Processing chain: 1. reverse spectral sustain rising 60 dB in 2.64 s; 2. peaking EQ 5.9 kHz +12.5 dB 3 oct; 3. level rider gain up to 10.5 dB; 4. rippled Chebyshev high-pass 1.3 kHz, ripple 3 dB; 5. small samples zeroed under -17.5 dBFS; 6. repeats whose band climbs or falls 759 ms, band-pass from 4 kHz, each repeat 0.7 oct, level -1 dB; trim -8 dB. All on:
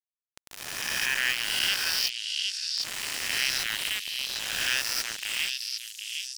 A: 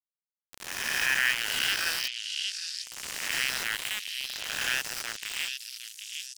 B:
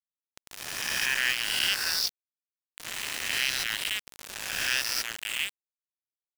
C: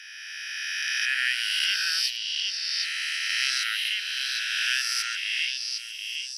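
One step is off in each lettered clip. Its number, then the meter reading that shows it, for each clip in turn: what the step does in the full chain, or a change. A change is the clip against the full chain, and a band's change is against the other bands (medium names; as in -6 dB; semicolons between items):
2, loudness change -2.0 LU; 6, echo-to-direct -12.0 dB to none; 5, distortion -2 dB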